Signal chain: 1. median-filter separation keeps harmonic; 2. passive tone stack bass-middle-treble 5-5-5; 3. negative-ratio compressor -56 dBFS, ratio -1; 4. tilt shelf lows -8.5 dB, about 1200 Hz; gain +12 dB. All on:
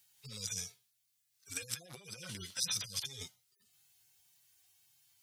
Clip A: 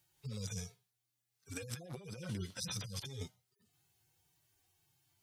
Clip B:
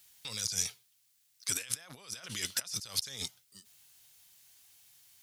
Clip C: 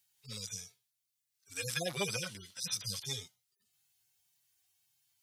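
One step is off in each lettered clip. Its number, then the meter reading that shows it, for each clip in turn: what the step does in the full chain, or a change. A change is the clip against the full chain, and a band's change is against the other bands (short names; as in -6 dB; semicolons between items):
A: 4, 8 kHz band -11.5 dB; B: 1, 125 Hz band -3.5 dB; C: 3, crest factor change -5.0 dB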